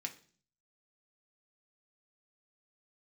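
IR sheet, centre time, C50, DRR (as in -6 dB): 9 ms, 14.5 dB, 2.5 dB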